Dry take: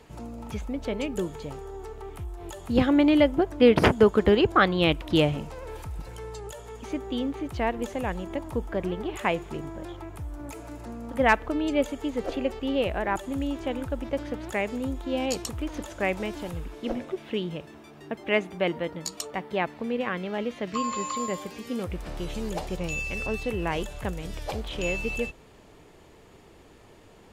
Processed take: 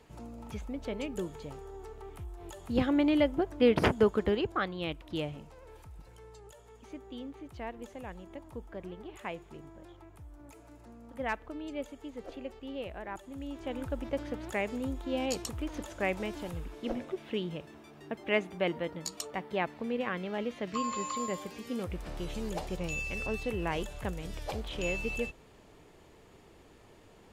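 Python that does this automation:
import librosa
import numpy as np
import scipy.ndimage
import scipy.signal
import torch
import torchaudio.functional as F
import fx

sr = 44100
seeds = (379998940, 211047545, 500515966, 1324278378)

y = fx.gain(x, sr, db=fx.line((4.05, -6.5), (4.74, -13.5), (13.32, -13.5), (13.86, -4.5)))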